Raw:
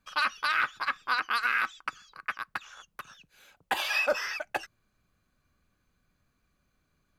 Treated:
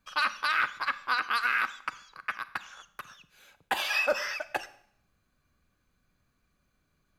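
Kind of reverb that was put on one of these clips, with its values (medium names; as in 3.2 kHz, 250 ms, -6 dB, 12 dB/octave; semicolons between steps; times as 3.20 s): Schroeder reverb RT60 0.63 s, combs from 32 ms, DRR 14.5 dB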